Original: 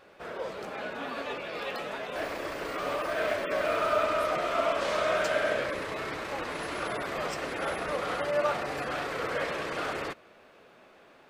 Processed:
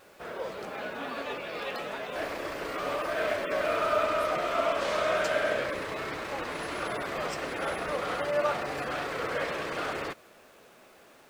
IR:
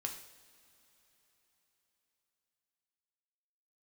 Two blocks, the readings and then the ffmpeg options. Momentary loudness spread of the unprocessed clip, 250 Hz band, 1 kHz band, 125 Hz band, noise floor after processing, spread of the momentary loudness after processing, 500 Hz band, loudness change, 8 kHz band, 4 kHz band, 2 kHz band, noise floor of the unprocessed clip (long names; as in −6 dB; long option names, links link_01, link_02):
9 LU, 0.0 dB, 0.0 dB, 0.0 dB, −56 dBFS, 9 LU, 0.0 dB, 0.0 dB, 0.0 dB, 0.0 dB, 0.0 dB, −57 dBFS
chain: -af "acrusher=bits=9:mix=0:aa=0.000001"